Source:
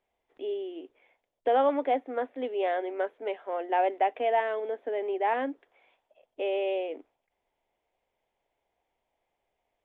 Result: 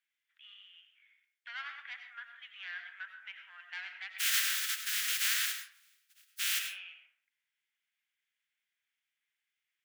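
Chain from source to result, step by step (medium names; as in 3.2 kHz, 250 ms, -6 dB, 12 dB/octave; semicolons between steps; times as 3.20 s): 4.18–6.58 s: spectral contrast reduction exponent 0.16; saturation -21 dBFS, distortion -15 dB; elliptic high-pass 1.5 kHz, stop band 70 dB; algorithmic reverb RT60 0.62 s, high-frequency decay 0.5×, pre-delay 55 ms, DRR 5.5 dB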